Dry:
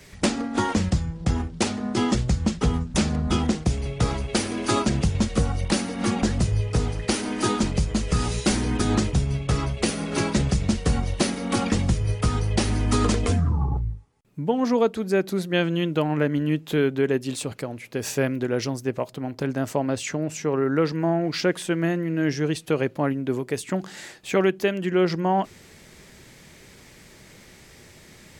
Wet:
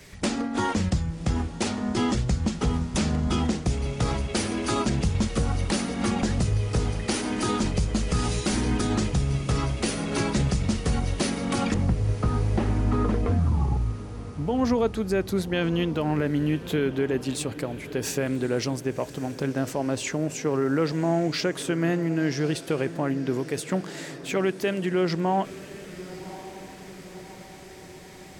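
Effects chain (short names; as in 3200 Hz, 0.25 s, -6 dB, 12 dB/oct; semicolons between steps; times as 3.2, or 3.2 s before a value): 11.74–14.41 LPF 1500 Hz 12 dB/oct; limiter -15.5 dBFS, peak gain reduction 6 dB; diffused feedback echo 1.105 s, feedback 57%, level -15 dB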